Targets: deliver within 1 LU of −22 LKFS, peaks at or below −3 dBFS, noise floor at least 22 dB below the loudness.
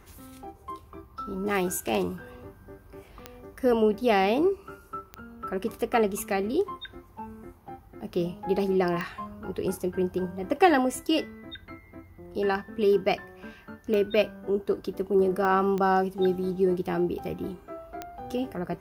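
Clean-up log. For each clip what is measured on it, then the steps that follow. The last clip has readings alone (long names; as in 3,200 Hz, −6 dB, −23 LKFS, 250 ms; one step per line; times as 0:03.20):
number of clicks 7; integrated loudness −27.0 LKFS; sample peak −6.0 dBFS; target loudness −22.0 LKFS
→ click removal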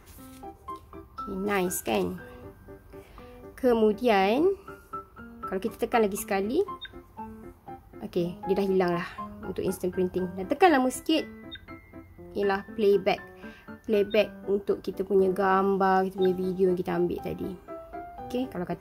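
number of clicks 0; integrated loudness −27.0 LKFS; sample peak −6.0 dBFS; target loudness −22.0 LKFS
→ level +5 dB
brickwall limiter −3 dBFS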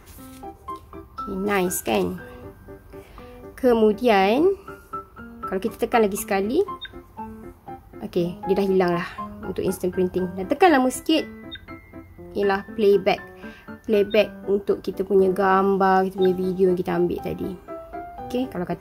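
integrated loudness −22.0 LKFS; sample peak −3.0 dBFS; background noise floor −48 dBFS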